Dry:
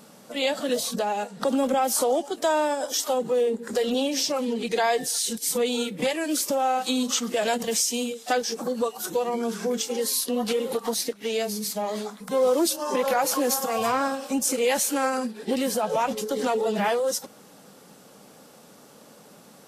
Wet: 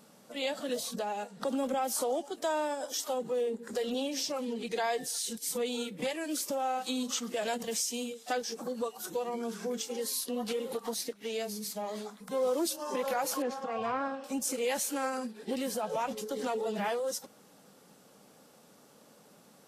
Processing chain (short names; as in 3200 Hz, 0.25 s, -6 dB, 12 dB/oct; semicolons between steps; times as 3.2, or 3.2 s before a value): 13.42–14.24 LPF 2700 Hz 12 dB/oct; gain -8.5 dB